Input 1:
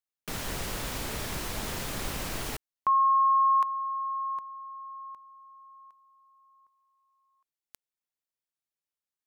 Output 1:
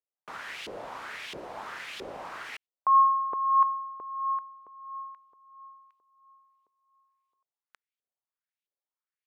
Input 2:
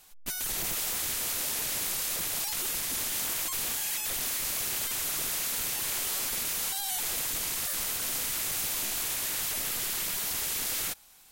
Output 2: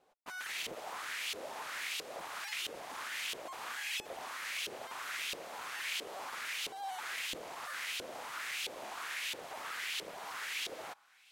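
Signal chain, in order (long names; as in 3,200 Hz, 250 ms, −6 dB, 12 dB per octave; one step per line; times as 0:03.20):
auto-filter band-pass saw up 1.5 Hz 420–3,200 Hz
level +5 dB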